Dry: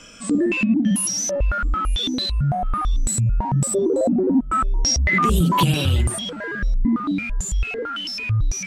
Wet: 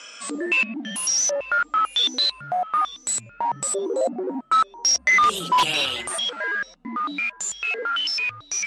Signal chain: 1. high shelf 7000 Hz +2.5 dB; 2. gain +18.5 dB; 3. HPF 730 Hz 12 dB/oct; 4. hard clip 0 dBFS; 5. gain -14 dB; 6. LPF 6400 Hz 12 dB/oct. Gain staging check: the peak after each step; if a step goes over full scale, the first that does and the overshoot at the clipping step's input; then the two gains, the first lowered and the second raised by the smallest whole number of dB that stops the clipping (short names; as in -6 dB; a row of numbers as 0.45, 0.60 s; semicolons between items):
-5.5, +13.0, +10.0, 0.0, -14.0, -13.0 dBFS; step 2, 10.0 dB; step 2 +8.5 dB, step 5 -4 dB